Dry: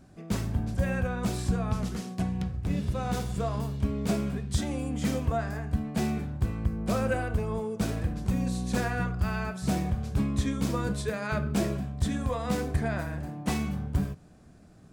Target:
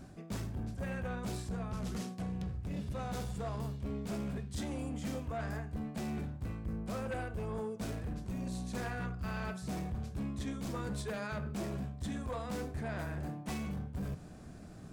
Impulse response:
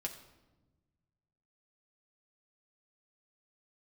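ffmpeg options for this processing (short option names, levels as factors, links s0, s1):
-af "areverse,acompressor=threshold=0.0126:ratio=6,areverse,aeval=exprs='0.0299*sin(PI/2*1.41*val(0)/0.0299)':c=same,volume=0.75"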